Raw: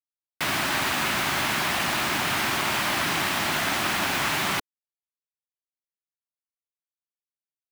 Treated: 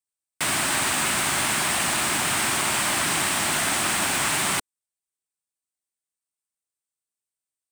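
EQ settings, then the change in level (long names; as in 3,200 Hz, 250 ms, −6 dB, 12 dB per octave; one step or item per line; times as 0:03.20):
parametric band 8,500 Hz +15 dB 0.5 octaves
0.0 dB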